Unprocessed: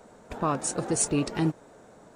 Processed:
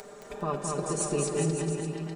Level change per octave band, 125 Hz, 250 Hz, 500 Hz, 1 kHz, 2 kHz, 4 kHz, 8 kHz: +1.0, -3.5, +2.5, -2.5, -3.0, -3.0, -3.5 dB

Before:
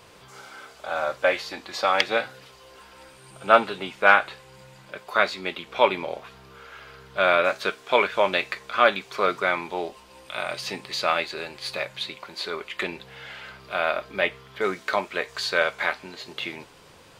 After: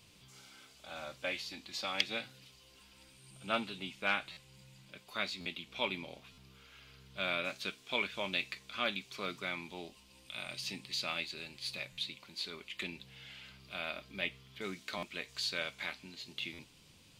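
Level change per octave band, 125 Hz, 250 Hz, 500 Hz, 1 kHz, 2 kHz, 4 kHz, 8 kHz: -7.0, -9.5, -19.0, -19.5, -14.0, -7.0, -7.0 dB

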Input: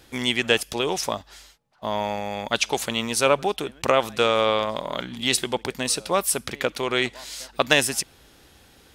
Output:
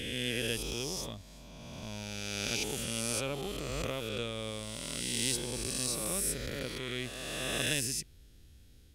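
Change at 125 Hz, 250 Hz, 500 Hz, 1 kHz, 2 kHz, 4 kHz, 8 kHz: -3.5, -9.0, -15.0, -20.0, -12.5, -9.5, -6.0 dB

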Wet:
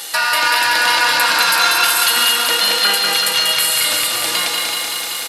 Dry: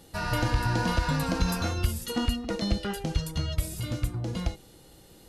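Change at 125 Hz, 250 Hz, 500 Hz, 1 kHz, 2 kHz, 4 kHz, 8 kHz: under -15 dB, -6.0 dB, +8.0 dB, +17.0 dB, +21.0 dB, +24.0 dB, +23.0 dB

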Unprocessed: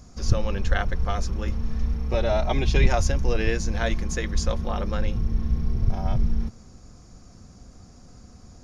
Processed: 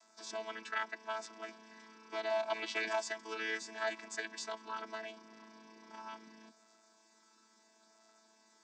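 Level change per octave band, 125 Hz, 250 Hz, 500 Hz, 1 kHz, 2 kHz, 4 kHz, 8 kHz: under -40 dB, -21.5 dB, -11.5 dB, -9.0 dB, -6.5 dB, -8.5 dB, n/a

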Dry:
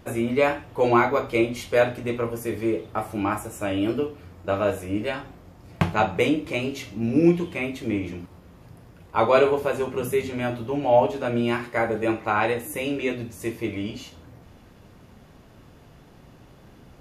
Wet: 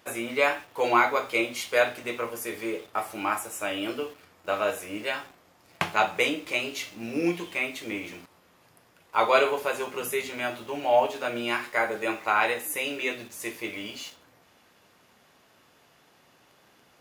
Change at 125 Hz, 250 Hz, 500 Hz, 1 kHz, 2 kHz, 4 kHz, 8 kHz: -16.0, -9.5, -5.0, -1.0, +2.0, +3.0, +3.5 dB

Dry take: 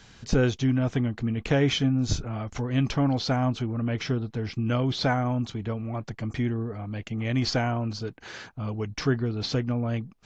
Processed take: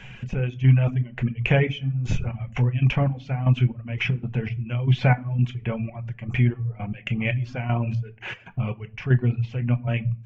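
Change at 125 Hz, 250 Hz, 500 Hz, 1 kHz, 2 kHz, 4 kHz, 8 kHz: +6.5 dB, -2.0 dB, -2.0 dB, -1.5 dB, +4.0 dB, -5.0 dB, n/a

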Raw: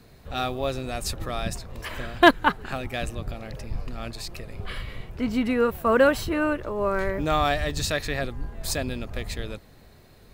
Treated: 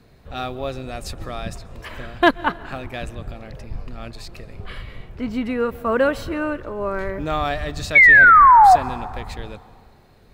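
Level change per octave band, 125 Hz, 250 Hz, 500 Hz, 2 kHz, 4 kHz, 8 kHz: 0.0, 0.0, +0.5, +12.5, -2.5, -5.0 dB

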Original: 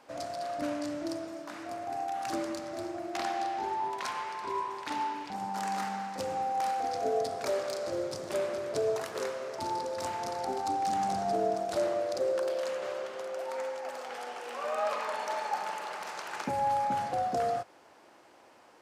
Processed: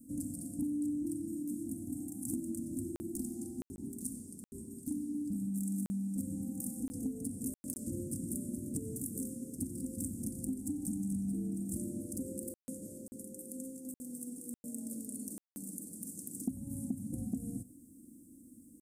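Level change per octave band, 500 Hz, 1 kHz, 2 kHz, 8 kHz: -19.0 dB, under -40 dB, under -35 dB, +4.0 dB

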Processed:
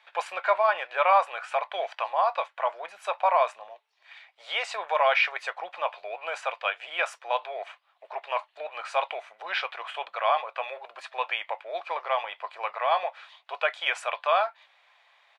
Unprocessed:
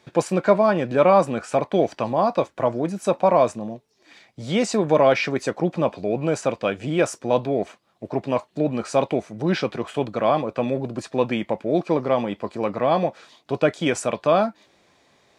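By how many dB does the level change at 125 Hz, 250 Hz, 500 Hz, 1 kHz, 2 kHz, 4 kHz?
under -40 dB, under -35 dB, -10.0 dB, -1.0 dB, +2.0 dB, 0.0 dB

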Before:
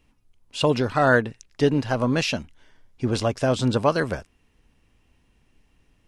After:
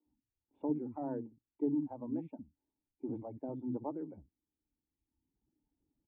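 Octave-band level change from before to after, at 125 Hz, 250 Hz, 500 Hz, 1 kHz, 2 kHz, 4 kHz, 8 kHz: -23.0 dB, -11.5 dB, -20.0 dB, -22.5 dB, under -40 dB, under -40 dB, under -40 dB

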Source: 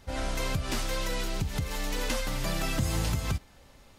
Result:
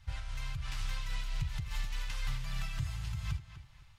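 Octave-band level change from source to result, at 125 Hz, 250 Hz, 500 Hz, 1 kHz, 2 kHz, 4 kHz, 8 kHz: -6.0, -16.0, -25.5, -13.0, -9.0, -9.5, -14.0 dB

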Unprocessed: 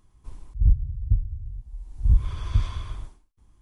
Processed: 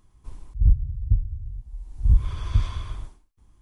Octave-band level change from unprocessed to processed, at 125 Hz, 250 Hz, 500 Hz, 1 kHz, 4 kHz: +1.0 dB, +1.0 dB, +1.0 dB, +1.0 dB, n/a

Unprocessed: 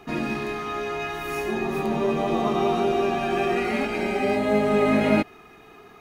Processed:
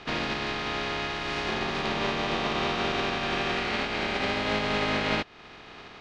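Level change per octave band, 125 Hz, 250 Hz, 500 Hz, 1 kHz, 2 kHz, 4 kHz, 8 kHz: -3.5, -8.5, -8.5, -3.5, +1.0, +7.0, -0.5 dB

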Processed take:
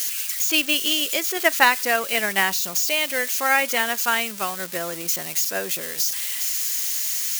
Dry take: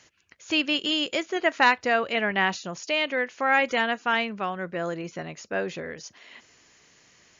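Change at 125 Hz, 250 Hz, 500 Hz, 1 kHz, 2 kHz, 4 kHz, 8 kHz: -3.5 dB, -2.0 dB, 0.0 dB, +1.5 dB, +3.5 dB, +5.5 dB, n/a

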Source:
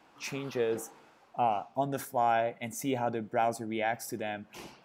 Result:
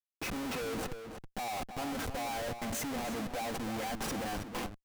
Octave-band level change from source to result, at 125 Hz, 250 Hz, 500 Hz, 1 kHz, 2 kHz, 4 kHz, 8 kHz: -2.0, -1.0, -7.5, -7.5, -2.0, +3.5, +1.5 dB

